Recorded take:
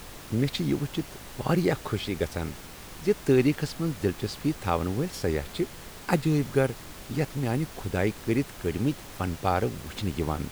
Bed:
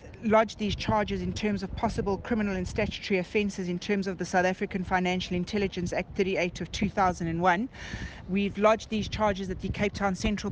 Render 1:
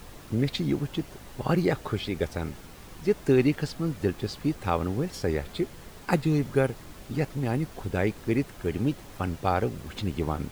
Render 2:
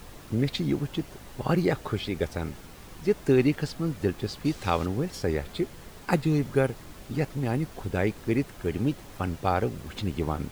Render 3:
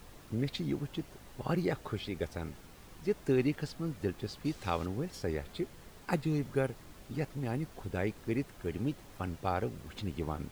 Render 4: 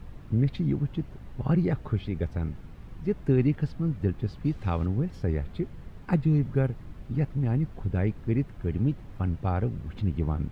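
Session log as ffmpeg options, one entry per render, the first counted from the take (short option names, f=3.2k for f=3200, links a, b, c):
-af "afftdn=nr=6:nf=-44"
-filter_complex "[0:a]asettb=1/sr,asplit=3[a][b][c];[a]atrim=end=4.454[d];[b]atrim=start=4.45:end=4.86,asetpts=PTS-STARTPTS,afade=t=in:d=0.004:c=qsin,afade=t=out:st=0.406:d=0.004:c=qsin,equalizer=f=4.8k:w=0.65:g=8[e];[c]atrim=start=4.856[f];[d][e]acrossfade=d=0.004:c1=hsin:c2=qsin[g];[g][f]acrossfade=d=0.004:c1=qsin:c2=hsin"
-af "volume=-7.5dB"
-af "bass=f=250:g=13,treble=f=4k:g=-14"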